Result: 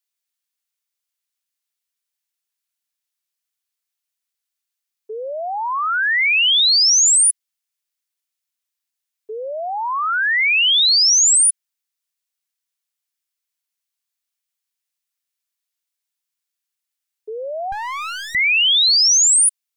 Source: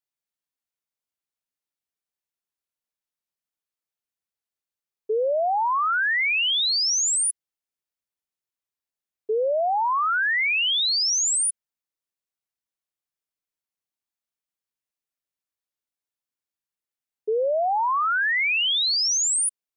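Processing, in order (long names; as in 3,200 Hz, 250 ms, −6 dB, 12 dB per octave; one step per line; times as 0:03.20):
tilt shelving filter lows −9.5 dB
0:17.72–0:18.35: windowed peak hold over 17 samples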